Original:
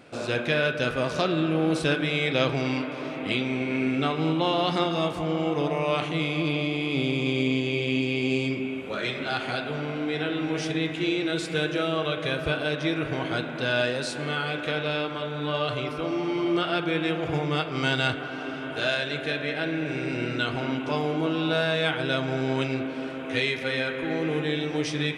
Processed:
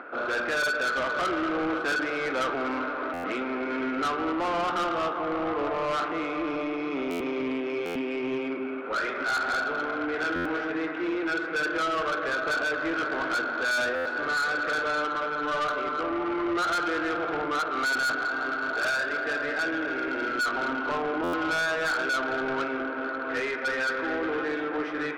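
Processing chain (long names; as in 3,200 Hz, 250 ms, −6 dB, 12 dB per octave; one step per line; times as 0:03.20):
high-pass filter 270 Hz 24 dB per octave
upward compression, threshold −43 dBFS
low-pass with resonance 1,400 Hz, resonance Q 4.8
soft clipping −25 dBFS, distortion −7 dB
buffer that repeats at 0:03.13/0:07.10/0:07.85/0:10.35/0:13.95/0:21.23, samples 512, times 8
level +1 dB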